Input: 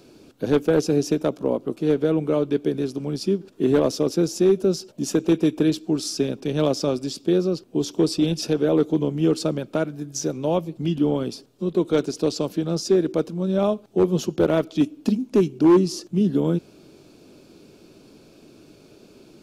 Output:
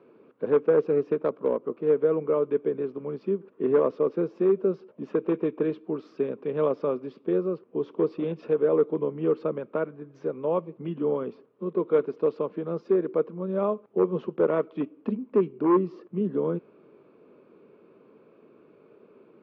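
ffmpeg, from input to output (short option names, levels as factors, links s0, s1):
-filter_complex "[0:a]highpass=220,equalizer=f=300:t=q:w=4:g=-6,equalizer=f=460:t=q:w=4:g=6,equalizer=f=730:t=q:w=4:g=-6,equalizer=f=1100:t=q:w=4:g=7,equalizer=f=1600:t=q:w=4:g=-3,lowpass=f=2100:w=0.5412,lowpass=f=2100:w=1.3066,asettb=1/sr,asplit=3[s0][s1][s2];[s0]atrim=end=0.914[s3];[s1]atrim=start=0.91:end=1.64,asetpts=PTS-STARTPTS,afade=t=in:d=0.004:c=qsin,afade=t=out:st=0.726:d=0.004:c=qsin,aeval=exprs='0.376*(cos(1*acos(clip(val(0)/0.376,-1,1)))-cos(1*PI/2))+0.0075*(cos(7*acos(clip(val(0)/0.376,-1,1)))-cos(7*PI/2))':c=same[s4];[s2]atrim=start=1.636[s5];[s3][s4]acrossfade=d=0.004:c1=hsin:c2=qsin[s6];[s6][s5]acrossfade=d=0.004:c1=qsin:c2=hsin,volume=0.631"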